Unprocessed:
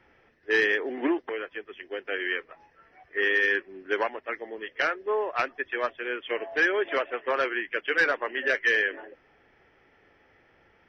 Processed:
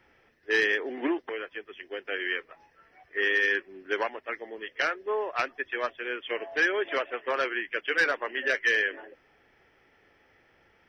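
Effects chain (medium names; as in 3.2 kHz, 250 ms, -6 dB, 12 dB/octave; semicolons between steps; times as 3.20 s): treble shelf 3.9 kHz +8 dB; trim -2.5 dB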